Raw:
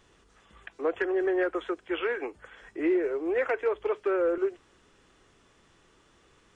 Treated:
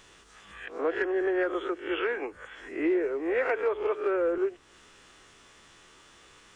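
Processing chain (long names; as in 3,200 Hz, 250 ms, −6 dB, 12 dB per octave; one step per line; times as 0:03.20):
peak hold with a rise ahead of every peak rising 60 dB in 0.41 s
one half of a high-frequency compander encoder only
level −1 dB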